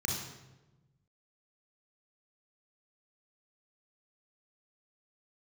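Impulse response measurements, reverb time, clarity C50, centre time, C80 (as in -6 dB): 1.1 s, 1.0 dB, 58 ms, 4.5 dB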